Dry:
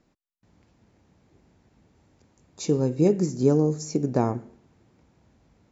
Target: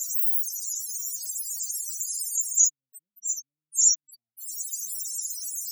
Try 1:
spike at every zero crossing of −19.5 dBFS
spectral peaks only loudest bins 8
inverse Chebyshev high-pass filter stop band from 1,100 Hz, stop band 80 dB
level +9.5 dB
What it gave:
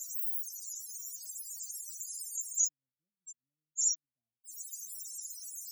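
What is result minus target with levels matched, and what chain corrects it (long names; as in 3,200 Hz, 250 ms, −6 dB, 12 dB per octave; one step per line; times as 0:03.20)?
spike at every zero crossing: distortion −11 dB
spike at every zero crossing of −8.5 dBFS
spectral peaks only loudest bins 8
inverse Chebyshev high-pass filter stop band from 1,100 Hz, stop band 80 dB
level +9.5 dB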